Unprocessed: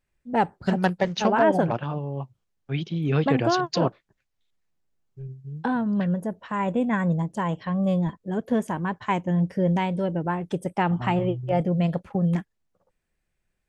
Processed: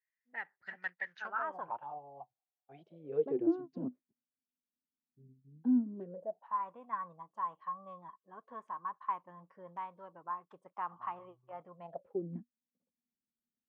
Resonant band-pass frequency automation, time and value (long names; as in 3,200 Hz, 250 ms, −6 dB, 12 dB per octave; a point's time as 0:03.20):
resonant band-pass, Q 12
0:01.00 1,900 Hz
0:01.97 750 Hz
0:02.72 750 Hz
0:03.74 250 Hz
0:05.80 250 Hz
0:06.58 1,100 Hz
0:11.76 1,100 Hz
0:12.36 240 Hz